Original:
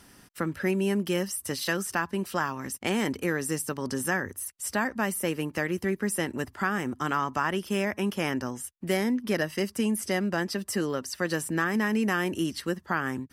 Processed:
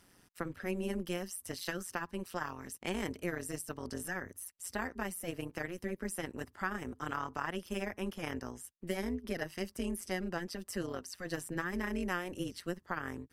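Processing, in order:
amplitude modulation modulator 180 Hz, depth 70%
level −6.5 dB

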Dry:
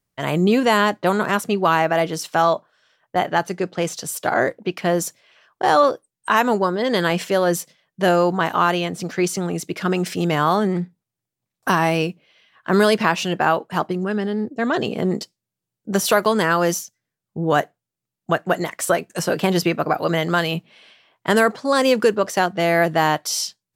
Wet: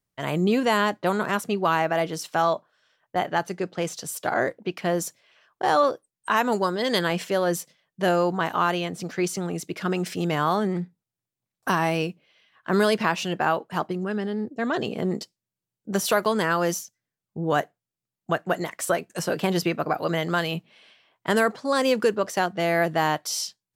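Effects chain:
0:06.52–0:06.99: high-shelf EQ 2,900 Hz +10 dB
level −5 dB

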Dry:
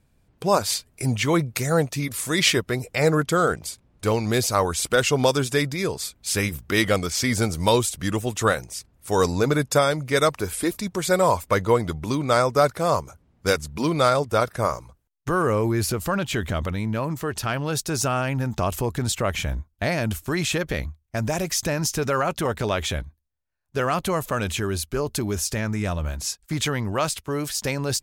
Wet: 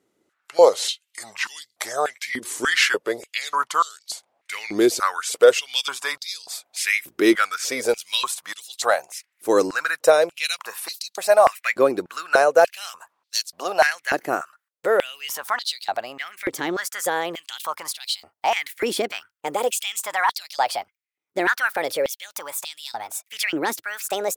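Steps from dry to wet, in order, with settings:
gliding playback speed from 84% → 146%
high-pass on a step sequencer 3.4 Hz 340–4,200 Hz
level −2 dB

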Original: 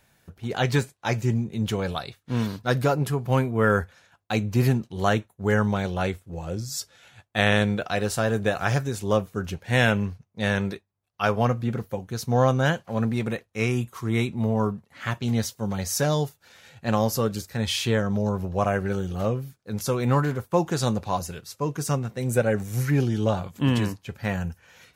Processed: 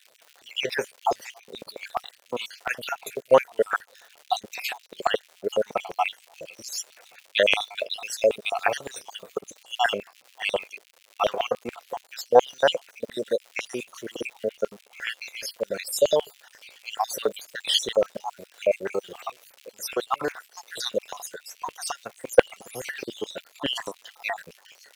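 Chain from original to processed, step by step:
time-frequency cells dropped at random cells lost 64%
in parallel at +2.5 dB: output level in coarse steps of 10 dB
on the sum: surface crackle 200 per second −37 dBFS
auto-filter high-pass square 7.1 Hz 530–2,600 Hz
level −1.5 dB

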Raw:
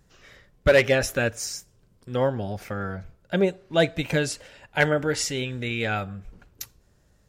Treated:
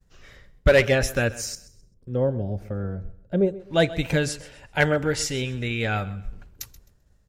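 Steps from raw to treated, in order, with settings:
0:01.55–0:03.60: drawn EQ curve 540 Hz 0 dB, 800 Hz −9 dB, 2,400 Hz −15 dB
repeating echo 130 ms, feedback 30%, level −18 dB
downward expander −55 dBFS
low-shelf EQ 76 Hz +12 dB

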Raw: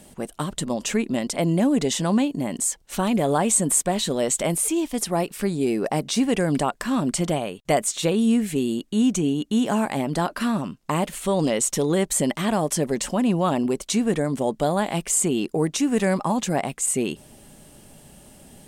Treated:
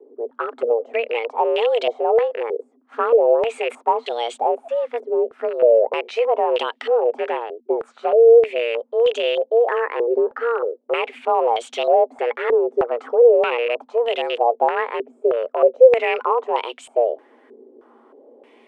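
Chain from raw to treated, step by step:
loose part that buzzes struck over −28 dBFS, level −19 dBFS
frequency shifter +230 Hz
dynamic equaliser 510 Hz, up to +6 dB, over −33 dBFS, Q 2
low-pass on a step sequencer 3.2 Hz 410–3,200 Hz
level −4.5 dB

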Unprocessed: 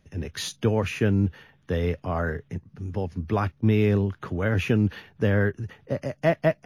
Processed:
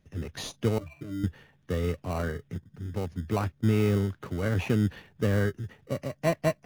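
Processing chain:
0:00.78–0:01.24: resonances in every octave D, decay 0.15 s
in parallel at −6 dB: decimation without filtering 26×
on the sum: level −6.5 dB

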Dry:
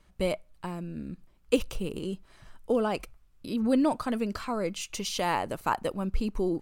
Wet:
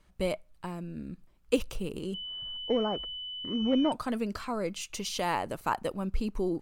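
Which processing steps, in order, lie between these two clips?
0:02.14–0:03.92: switching amplifier with a slow clock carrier 3,000 Hz
level −2 dB

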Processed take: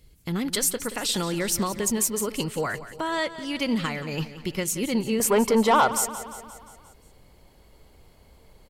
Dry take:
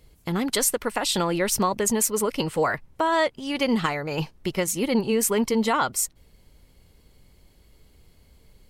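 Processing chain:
parametric band 790 Hz −7.5 dB 1.9 octaves, from 0:05.20 +9 dB
soft clipping −12.5 dBFS, distortion −15 dB
repeating echo 176 ms, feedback 58%, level −14 dB

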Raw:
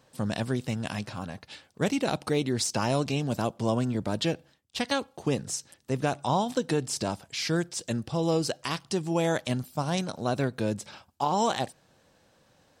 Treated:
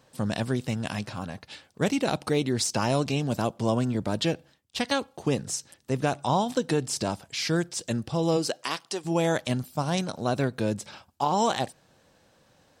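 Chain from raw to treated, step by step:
0:08.36–0:09.04: high-pass filter 180 Hz → 510 Hz 12 dB per octave
level +1.5 dB

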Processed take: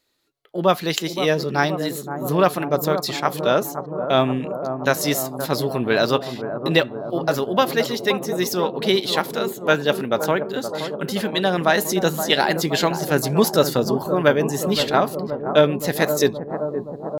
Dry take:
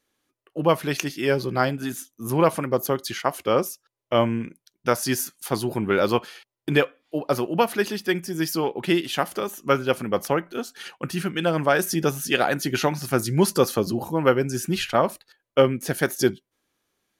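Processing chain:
parametric band 3,700 Hz +10 dB 0.35 octaves
pitch shifter +2 semitones
bucket-brigade delay 522 ms, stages 4,096, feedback 75%, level −9 dB
level +2 dB

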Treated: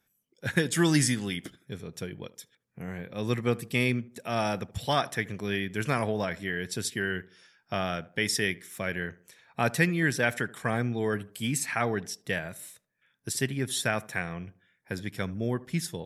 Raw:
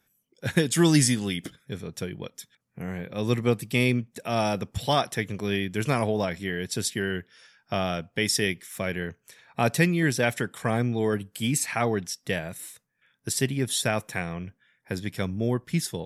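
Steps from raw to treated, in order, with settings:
dynamic equaliser 1,600 Hz, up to +6 dB, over −43 dBFS, Q 1.7
tape delay 77 ms, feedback 44%, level −18 dB, low-pass 1,100 Hz
level −4 dB

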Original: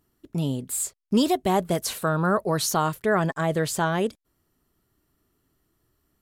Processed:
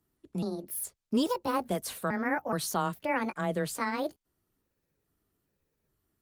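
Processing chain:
pitch shifter gated in a rhythm +5 semitones, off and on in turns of 420 ms
frequency shifter +14 Hz
level −6.5 dB
Opus 32 kbit/s 48,000 Hz

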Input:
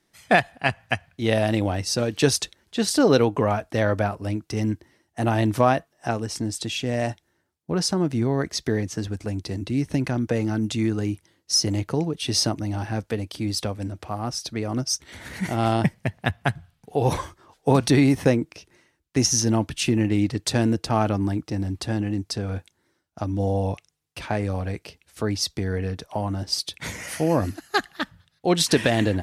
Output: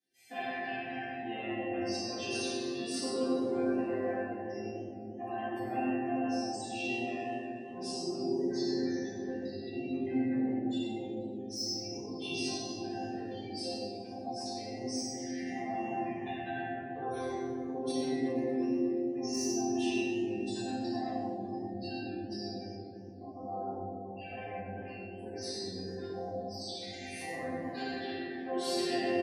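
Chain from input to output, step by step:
spectral magnitudes quantised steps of 15 dB
elliptic band-stop filter 760–1,600 Hz
brickwall limiter −14 dBFS, peak gain reduction 8.5 dB
soft clipping −22.5 dBFS, distortion −11 dB
rectangular room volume 190 cubic metres, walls hard, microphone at 1.9 metres
gate on every frequency bin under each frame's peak −30 dB strong
high-pass filter 110 Hz 12 dB per octave
high-shelf EQ 9,200 Hz +4.5 dB
resonators tuned to a chord C4 sus4, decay 0.62 s
on a send: single-tap delay 97 ms −7.5 dB
on the sum: feedback echo with a swinging delay time 120 ms, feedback 69%, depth 209 cents, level −20 dB
level +4.5 dB

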